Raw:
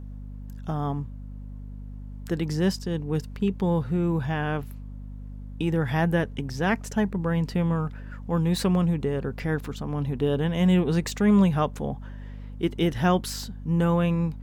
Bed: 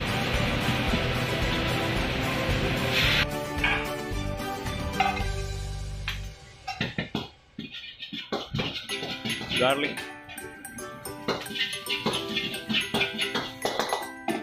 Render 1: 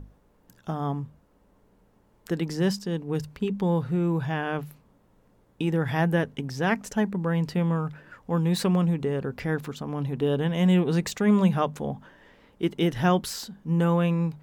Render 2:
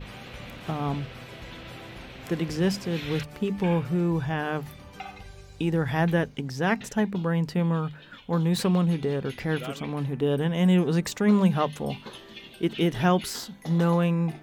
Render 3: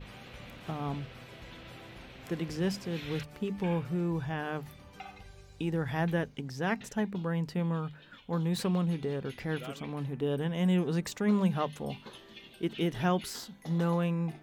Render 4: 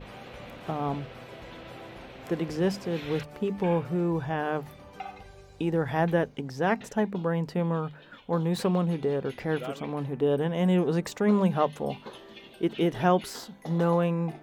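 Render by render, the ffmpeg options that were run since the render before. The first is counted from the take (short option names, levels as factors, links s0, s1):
-af "bandreject=f=50:t=h:w=6,bandreject=f=100:t=h:w=6,bandreject=f=150:t=h:w=6,bandreject=f=200:t=h:w=6,bandreject=f=250:t=h:w=6"
-filter_complex "[1:a]volume=0.178[s0];[0:a][s0]amix=inputs=2:normalize=0"
-af "volume=0.473"
-af "equalizer=f=600:t=o:w=2.5:g=8.5"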